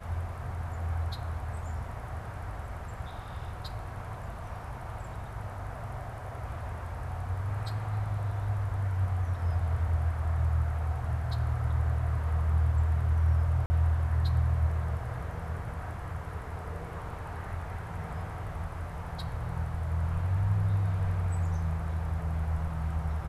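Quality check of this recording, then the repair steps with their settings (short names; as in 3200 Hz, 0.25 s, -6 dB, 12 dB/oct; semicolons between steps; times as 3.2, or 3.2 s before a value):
13.66–13.7 gap 40 ms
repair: interpolate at 13.66, 40 ms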